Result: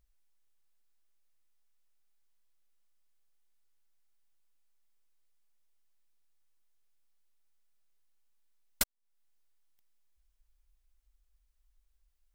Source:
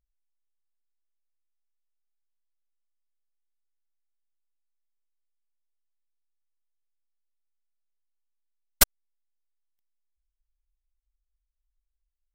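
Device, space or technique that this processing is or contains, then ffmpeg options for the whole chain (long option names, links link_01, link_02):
serial compression, peaks first: -af "acompressor=threshold=-24dB:ratio=6,acompressor=threshold=-47dB:ratio=2,volume=9dB"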